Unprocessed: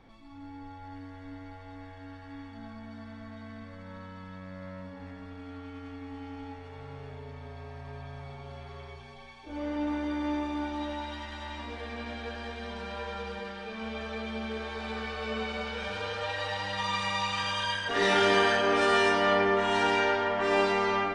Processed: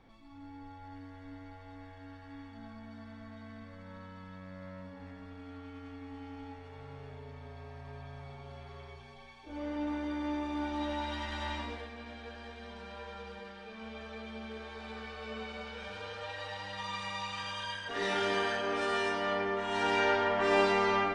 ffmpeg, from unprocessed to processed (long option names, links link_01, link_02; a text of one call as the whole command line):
ffmpeg -i in.wav -af "volume=10dB,afade=type=in:start_time=10.39:duration=1.1:silence=0.446684,afade=type=out:start_time=11.49:duration=0.42:silence=0.281838,afade=type=in:start_time=19.67:duration=0.45:silence=0.446684" out.wav